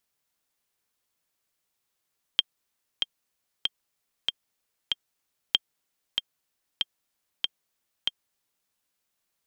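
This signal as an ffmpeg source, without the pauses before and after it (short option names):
-f lavfi -i "aevalsrc='pow(10,(-6-5.5*gte(mod(t,5*60/95),60/95))/20)*sin(2*PI*3190*mod(t,60/95))*exp(-6.91*mod(t,60/95)/0.03)':d=6.31:s=44100"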